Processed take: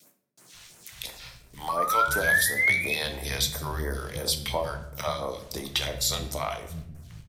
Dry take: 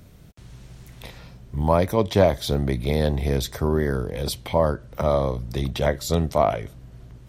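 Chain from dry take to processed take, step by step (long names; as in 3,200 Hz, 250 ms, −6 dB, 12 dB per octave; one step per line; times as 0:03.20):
tilt shelving filter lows −9 dB, about 930 Hz
noise gate with hold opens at −40 dBFS
0:02.10–0:02.60: parametric band 11,000 Hz +14.5 dB 0.72 octaves
downward compressor 4 to 1, threshold −26 dBFS, peak gain reduction 11 dB
0:01.69–0:02.95: sound drawn into the spectrogram rise 1,100–2,600 Hz −24 dBFS
dead-zone distortion −57.5 dBFS
all-pass phaser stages 2, 2.9 Hz, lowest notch 180–3,700 Hz
multiband delay without the direct sound highs, lows 540 ms, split 190 Hz
rectangular room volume 210 cubic metres, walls mixed, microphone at 0.52 metres
level +1.5 dB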